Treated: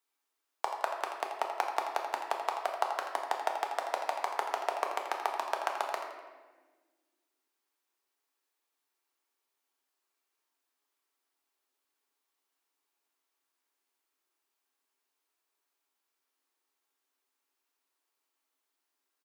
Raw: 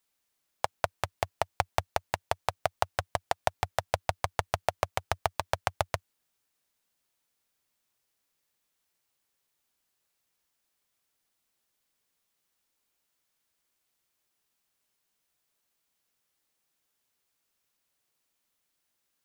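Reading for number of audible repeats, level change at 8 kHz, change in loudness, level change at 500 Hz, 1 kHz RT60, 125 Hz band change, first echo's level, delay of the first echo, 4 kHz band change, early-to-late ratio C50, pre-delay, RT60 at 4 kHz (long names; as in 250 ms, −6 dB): 1, −6.0 dB, −1.5 dB, −3.0 dB, 1.2 s, below −40 dB, −10.0 dB, 83 ms, −4.5 dB, 3.5 dB, 4 ms, 1.0 s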